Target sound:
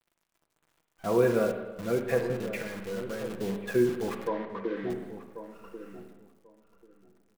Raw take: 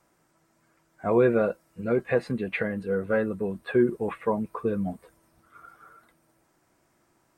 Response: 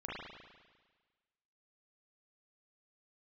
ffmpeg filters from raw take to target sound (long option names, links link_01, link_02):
-filter_complex "[0:a]asettb=1/sr,asplit=3[link_01][link_02][link_03];[link_01]atrim=end=2.204[link_04];[link_02]atrim=start=2.2:end=3.4,asetpts=PTS-STARTPTS,afade=type=in:duration=0.004:curve=qsin,afade=type=out:start_time=1.196:duration=0.004:curve=qsin,acompressor=threshold=-32dB:ratio=4[link_05];[link_03]atrim=start=3.396[link_06];[link_04][link_05]acrossfade=duration=0.004:curve1=hsin:curve2=qsin[link_07];[link_07][link_06]acrossfade=duration=0.004:curve1=qsin:curve2=hsin,acrusher=bits=7:dc=4:mix=0:aa=0.000001,asettb=1/sr,asplit=3[link_08][link_09][link_10];[link_08]atrim=end=4.274[link_11];[link_09]atrim=start=4.27:end=4.9,asetpts=PTS-STARTPTS,afade=type=in:duration=0.004:curve=qsin,afade=type=out:start_time=0.626:duration=0.004:curve=qsin,highpass=frequency=280:width=0.5412,highpass=frequency=280:width=1.3066,equalizer=frequency=300:width_type=q:width=4:gain=7,equalizer=frequency=440:width_type=q:width=4:gain=-3,equalizer=frequency=760:width_type=q:width=4:gain=-4,equalizer=frequency=1100:width_type=q:width=4:gain=-3,equalizer=frequency=1900:width_type=q:width=4:gain=7,equalizer=frequency=2700:width_type=q:width=4:gain=-7,lowpass=frequency=3200:width=0.5412,lowpass=frequency=3200:width=1.3066[link_12];[link_10]atrim=start=4.896[link_13];[link_11][link_12]acrossfade=duration=0.004:curve1=hsin:curve2=qsin[link_14];[link_14][link_13]acrossfade=duration=0.004:curve1=qsin:curve2=hsin,asplit=2[link_15][link_16];[link_16]adelay=1089,lowpass=frequency=860:poles=1,volume=-10dB,asplit=2[link_17][link_18];[link_18]adelay=1089,lowpass=frequency=860:poles=1,volume=0.19,asplit=2[link_19][link_20];[link_20]adelay=1089,lowpass=frequency=860:poles=1,volume=0.19[link_21];[link_15][link_17][link_19][link_21]amix=inputs=4:normalize=0,asplit=2[link_22][link_23];[1:a]atrim=start_sample=2205,afade=type=out:start_time=0.42:duration=0.01,atrim=end_sample=18963,adelay=6[link_24];[link_23][link_24]afir=irnorm=-1:irlink=0,volume=-6.5dB[link_25];[link_22][link_25]amix=inputs=2:normalize=0,volume=-4dB"